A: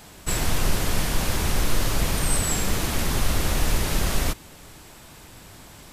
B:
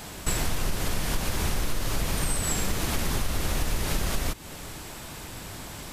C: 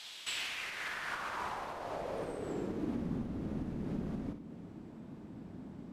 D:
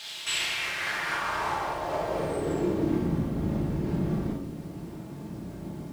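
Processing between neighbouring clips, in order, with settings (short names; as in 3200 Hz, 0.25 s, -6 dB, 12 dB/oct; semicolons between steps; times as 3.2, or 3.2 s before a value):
compressor 6:1, threshold -29 dBFS, peak gain reduction 14 dB; gain +6 dB
band-pass sweep 3500 Hz -> 230 Hz, 0.16–3.08; flutter echo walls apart 9.8 m, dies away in 0.41 s; gain +1.5 dB
bit-crush 11-bit; notch comb 250 Hz; reverb RT60 0.65 s, pre-delay 19 ms, DRR -0.5 dB; gain +8 dB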